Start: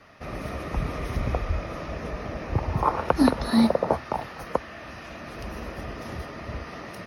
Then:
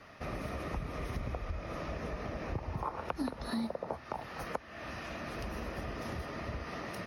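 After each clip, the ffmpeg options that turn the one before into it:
-af "acompressor=threshold=-34dB:ratio=4,volume=-1.5dB"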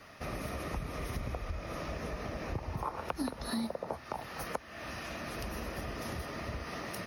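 -af "crystalizer=i=1.5:c=0"

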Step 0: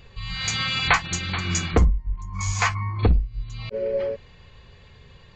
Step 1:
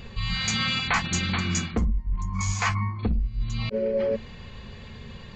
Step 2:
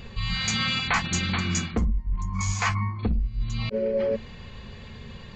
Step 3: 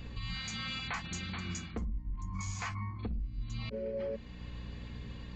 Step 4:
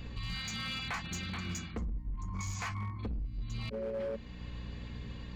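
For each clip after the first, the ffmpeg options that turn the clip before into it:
-af "equalizer=f=220:w=3.8:g=12.5,areverse,acompressor=threshold=-29dB:ratio=6,areverse,volume=6.5dB"
-af anull
-af "aeval=exprs='val(0)+0.0141*(sin(2*PI*60*n/s)+sin(2*PI*2*60*n/s)/2+sin(2*PI*3*60*n/s)/3+sin(2*PI*4*60*n/s)/4+sin(2*PI*5*60*n/s)/5)':c=same,alimiter=limit=-22dB:level=0:latency=1:release=378,volume=-7dB"
-af "asoftclip=type=hard:threshold=-33dB,volume=1dB"

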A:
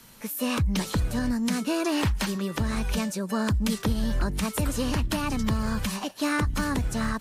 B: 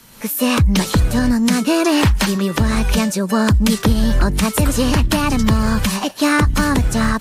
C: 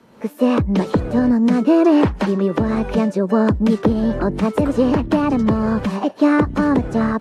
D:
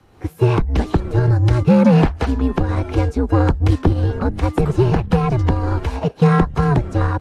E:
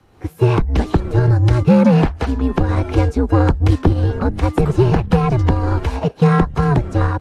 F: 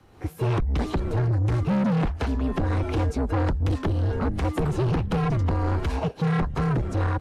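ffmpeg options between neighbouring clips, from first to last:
-af "dynaudnorm=f=100:g=3:m=6dB,volume=5dB"
-af "bandpass=f=420:t=q:w=0.95:csg=0,volume=4.5dB"
-af "afreqshift=-130,aeval=exprs='0.75*(cos(1*acos(clip(val(0)/0.75,-1,1)))-cos(1*PI/2))+0.0335*(cos(7*acos(clip(val(0)/0.75,-1,1)))-cos(7*PI/2))':c=same,volume=1.5dB"
-af "dynaudnorm=f=220:g=3:m=11.5dB,volume=-1dB"
-af "asoftclip=type=tanh:threshold=-18.5dB,volume=-1.5dB"

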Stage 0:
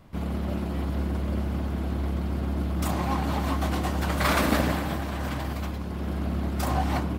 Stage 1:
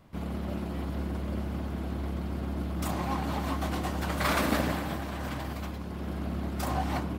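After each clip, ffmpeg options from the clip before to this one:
-af "lowshelf=f=64:g=-5.5,volume=-3.5dB"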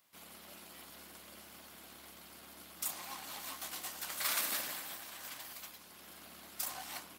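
-af "aeval=exprs='0.2*(cos(1*acos(clip(val(0)/0.2,-1,1)))-cos(1*PI/2))+0.0126*(cos(4*acos(clip(val(0)/0.2,-1,1)))-cos(4*PI/2))':c=same,aderivative,volume=3dB"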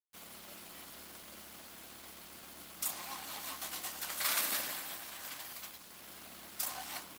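-af "acrusher=bits=8:mix=0:aa=0.000001,volume=1.5dB"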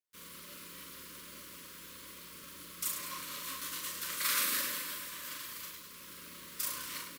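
-filter_complex "[0:a]asuperstop=centerf=750:order=20:qfactor=2.2,asplit=2[a][b];[b]aecho=0:1:40|104|206.4|370.2|632.4:0.631|0.398|0.251|0.158|0.1[c];[a][c]amix=inputs=2:normalize=0"

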